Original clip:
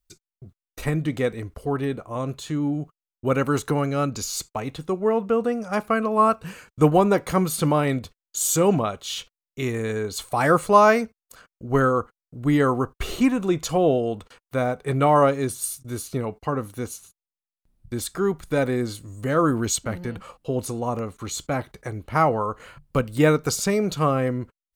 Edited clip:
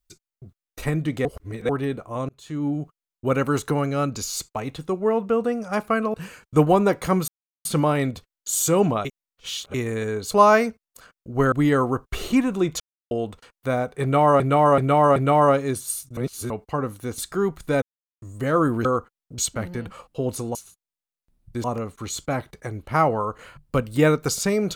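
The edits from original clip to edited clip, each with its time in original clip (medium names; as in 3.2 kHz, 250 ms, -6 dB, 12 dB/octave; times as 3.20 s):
1.25–1.69 s: reverse
2.29–2.68 s: fade in
6.14–6.39 s: delete
7.53 s: insert silence 0.37 s
8.93–9.62 s: reverse
10.19–10.66 s: delete
11.87–12.40 s: move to 19.68 s
13.68–13.99 s: mute
14.90–15.28 s: loop, 4 plays
15.91–16.24 s: reverse
16.92–18.01 s: move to 20.85 s
18.65–19.05 s: mute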